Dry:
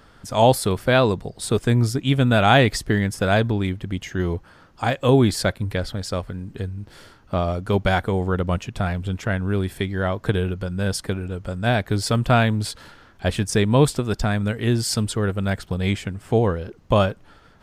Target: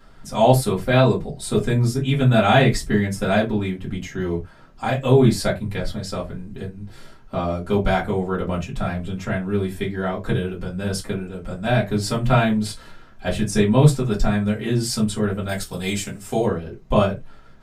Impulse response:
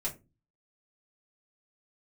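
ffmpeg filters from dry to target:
-filter_complex "[0:a]asplit=3[s0][s1][s2];[s0]afade=t=out:st=15.48:d=0.02[s3];[s1]bass=f=250:g=-4,treble=f=4000:g=14,afade=t=in:st=15.48:d=0.02,afade=t=out:st=16.44:d=0.02[s4];[s2]afade=t=in:st=16.44:d=0.02[s5];[s3][s4][s5]amix=inputs=3:normalize=0[s6];[1:a]atrim=start_sample=2205,afade=t=out:st=0.15:d=0.01,atrim=end_sample=7056[s7];[s6][s7]afir=irnorm=-1:irlink=0,volume=0.708"

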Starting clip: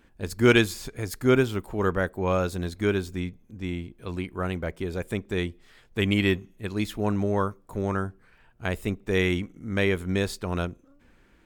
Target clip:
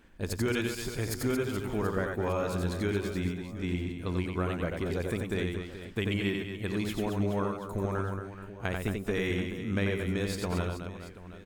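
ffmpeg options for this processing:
-filter_complex "[0:a]acompressor=threshold=0.0398:ratio=6,asplit=2[s0][s1];[s1]aecho=0:1:90|225|427.5|731.2|1187:0.631|0.398|0.251|0.158|0.1[s2];[s0][s2]amix=inputs=2:normalize=0"

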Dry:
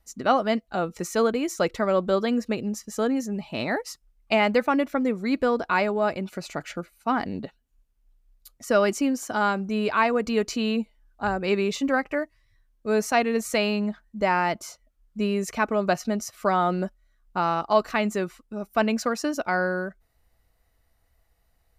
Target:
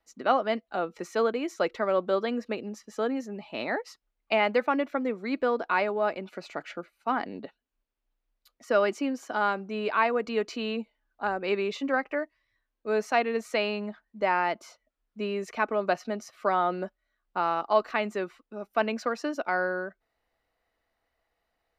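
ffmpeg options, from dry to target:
-filter_complex "[0:a]acrossover=split=240 4500:gain=0.141 1 0.178[s0][s1][s2];[s0][s1][s2]amix=inputs=3:normalize=0,volume=0.75"

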